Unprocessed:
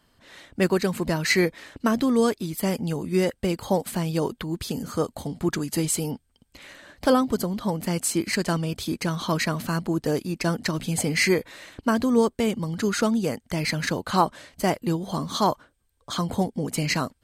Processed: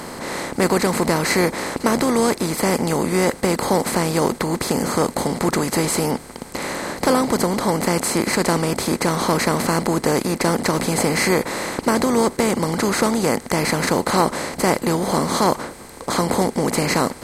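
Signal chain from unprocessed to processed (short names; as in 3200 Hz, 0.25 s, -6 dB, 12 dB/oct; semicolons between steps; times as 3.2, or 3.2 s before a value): per-bin compression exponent 0.4; bell 2900 Hz -5 dB 0.7 oct; gain -1 dB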